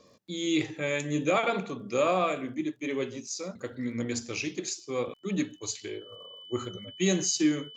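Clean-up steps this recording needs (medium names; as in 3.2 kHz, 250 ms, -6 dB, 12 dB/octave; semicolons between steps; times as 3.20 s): de-click; band-stop 3 kHz, Q 30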